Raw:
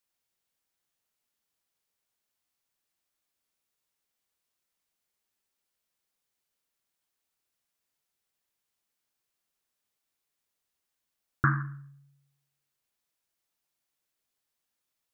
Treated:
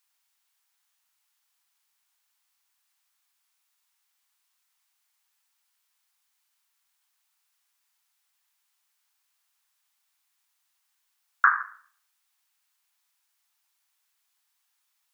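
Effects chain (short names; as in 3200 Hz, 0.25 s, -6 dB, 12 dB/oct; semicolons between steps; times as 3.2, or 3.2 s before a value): steep high-pass 800 Hz 36 dB/oct; gain +8.5 dB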